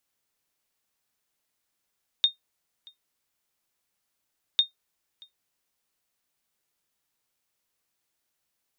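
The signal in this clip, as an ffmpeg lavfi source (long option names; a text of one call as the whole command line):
ffmpeg -f lavfi -i "aevalsrc='0.266*(sin(2*PI*3680*mod(t,2.35))*exp(-6.91*mod(t,2.35)/0.13)+0.0422*sin(2*PI*3680*max(mod(t,2.35)-0.63,0))*exp(-6.91*max(mod(t,2.35)-0.63,0)/0.13))':duration=4.7:sample_rate=44100" out.wav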